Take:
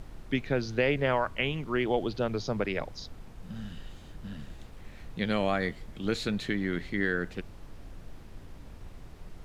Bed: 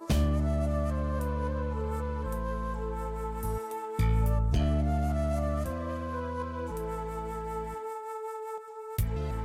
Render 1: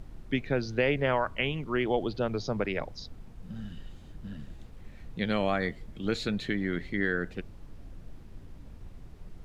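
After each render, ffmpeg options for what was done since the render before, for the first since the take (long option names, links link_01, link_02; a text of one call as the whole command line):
ffmpeg -i in.wav -af "afftdn=noise_reduction=6:noise_floor=-48" out.wav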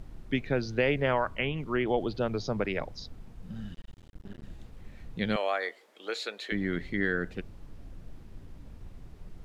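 ffmpeg -i in.wav -filter_complex "[0:a]asettb=1/sr,asplit=3[link_01][link_02][link_03];[link_01]atrim=end=1.134[link_04];[link_02]atrim=start=1.13:end=2.07,asetpts=PTS-STARTPTS,afade=type=in:duration=0.004:curve=qsin,afade=type=out:start_time=0.936:duration=0.004:curve=qsin,acrossover=split=3400[link_05][link_06];[link_06]acompressor=threshold=-54dB:ratio=4:attack=1:release=60[link_07];[link_05][link_07]amix=inputs=2:normalize=0[link_08];[link_03]atrim=start=2.066[link_09];[link_04][link_08]acrossfade=duration=0.004:curve1=hsin:curve2=qsin[link_10];[link_10][link_09]acrossfade=duration=0.004:curve1=qsin:curve2=hsin,asettb=1/sr,asplit=3[link_11][link_12][link_13];[link_11]atrim=end=3.744[link_14];[link_12]atrim=start=3.74:end=4.43,asetpts=PTS-STARTPTS,afade=type=in:duration=0.004:curve=qsin,afade=type=out:start_time=0.686:duration=0.004:curve=qsin,aeval=exprs='max(val(0),0)':channel_layout=same[link_15];[link_13]atrim=start=4.426[link_16];[link_14][link_15]acrossfade=duration=0.004:curve1=hsin:curve2=qsin[link_17];[link_17][link_16]acrossfade=duration=0.004:curve1=qsin:curve2=hsin,asettb=1/sr,asplit=3[link_18][link_19][link_20];[link_18]atrim=end=5.364[link_21];[link_19]atrim=start=5.36:end=6.52,asetpts=PTS-STARTPTS,afade=type=in:duration=0.004:curve=qsin,afade=type=out:start_time=1.156:duration=0.004:curve=qsin,highpass=frequency=450:width=0.5412,highpass=frequency=450:width=1.3066[link_22];[link_20]atrim=start=6.516[link_23];[link_21][link_22]acrossfade=duration=0.004:curve1=hsin:curve2=qsin[link_24];[link_24][link_23]acrossfade=duration=0.004:curve1=qsin:curve2=hsin" out.wav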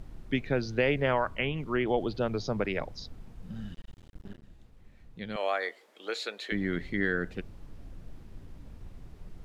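ffmpeg -i in.wav -filter_complex "[0:a]asplit=3[link_01][link_02][link_03];[link_01]atrim=end=4.4,asetpts=PTS-STARTPTS,afade=type=out:start_time=4.28:duration=0.12:curve=qsin:silence=0.354813[link_04];[link_02]atrim=start=4.4:end=5.34,asetpts=PTS-STARTPTS,volume=-9dB[link_05];[link_03]atrim=start=5.34,asetpts=PTS-STARTPTS,afade=type=in:duration=0.12:curve=qsin:silence=0.354813[link_06];[link_04][link_05][link_06]concat=n=3:v=0:a=1" out.wav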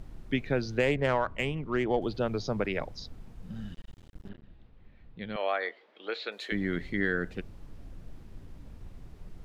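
ffmpeg -i in.wav -filter_complex "[0:a]asettb=1/sr,asplit=3[link_01][link_02][link_03];[link_01]atrim=end=0.794[link_04];[link_02]atrim=start=0.79:end=2.02,asetpts=PTS-STARTPTS,afade=type=in:duration=0.004:curve=qsin,afade=type=out:start_time=1.226:duration=0.004:curve=qsin,adynamicsmooth=sensitivity=2:basefreq=2700[link_05];[link_03]atrim=start=2.016[link_06];[link_04][link_05]acrossfade=duration=0.004:curve1=hsin:curve2=qsin[link_07];[link_07][link_06]acrossfade=duration=0.004:curve1=qsin:curve2=hsin,asettb=1/sr,asplit=3[link_08][link_09][link_10];[link_08]atrim=end=4.294[link_11];[link_09]atrim=start=4.29:end=6.32,asetpts=PTS-STARTPTS,afade=type=in:duration=0.004:curve=qsin,afade=type=out:start_time=2.026:duration=0.004:curve=qsin,lowpass=frequency=4000:width=0.5412,lowpass=frequency=4000:width=1.3066[link_12];[link_10]atrim=start=6.316[link_13];[link_11][link_12]acrossfade=duration=0.004:curve1=hsin:curve2=qsin[link_14];[link_14][link_13]acrossfade=duration=0.004:curve1=qsin:curve2=hsin" out.wav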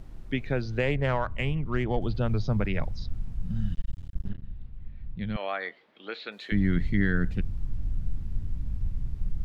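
ffmpeg -i in.wav -filter_complex "[0:a]acrossover=split=4500[link_01][link_02];[link_02]acompressor=threshold=-56dB:ratio=4:attack=1:release=60[link_03];[link_01][link_03]amix=inputs=2:normalize=0,asubboost=boost=7.5:cutoff=160" out.wav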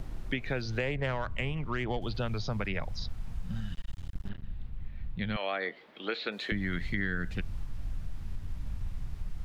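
ffmpeg -i in.wav -filter_complex "[0:a]asplit=2[link_01][link_02];[link_02]alimiter=limit=-21.5dB:level=0:latency=1:release=217,volume=2dB[link_03];[link_01][link_03]amix=inputs=2:normalize=0,acrossover=split=570|1900[link_04][link_05][link_06];[link_04]acompressor=threshold=-33dB:ratio=4[link_07];[link_05]acompressor=threshold=-38dB:ratio=4[link_08];[link_06]acompressor=threshold=-37dB:ratio=4[link_09];[link_07][link_08][link_09]amix=inputs=3:normalize=0" out.wav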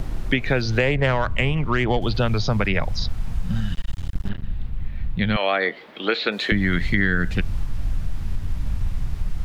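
ffmpeg -i in.wav -af "volume=12dB" out.wav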